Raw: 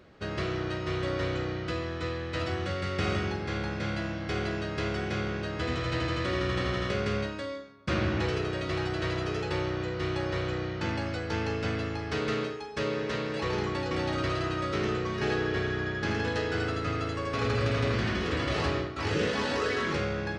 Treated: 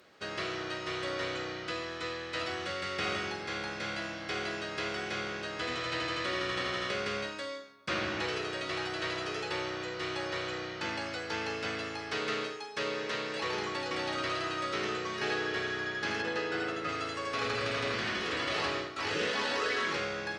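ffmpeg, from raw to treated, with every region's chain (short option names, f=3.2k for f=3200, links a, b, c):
-filter_complex "[0:a]asettb=1/sr,asplit=3[a][b][c];[a]atrim=end=16.224[d];[b]atrim=start=16.22:end=16.89,asetpts=PTS-STARTPTS,afade=t=in:d=0.004:c=qsin,afade=t=out:st=0.666:d=0.004:c=qsin,lowpass=f=2.3k:p=1,equalizer=f=380:t=o:w=0.42:g=4.5,aecho=1:1:5.6:0.49,atrim=end_sample=29547[e];[c]atrim=start=16.886[f];[d][e]acrossfade=d=0.004:c1=hsin:c2=qsin[g];[g][f]acrossfade=d=0.004:c1=qsin:c2=hsin,aemphasis=mode=production:type=cd,acrossover=split=4800[h][i];[i]acompressor=threshold=-50dB:ratio=4:attack=1:release=60[j];[h][j]amix=inputs=2:normalize=0,highpass=f=610:p=1"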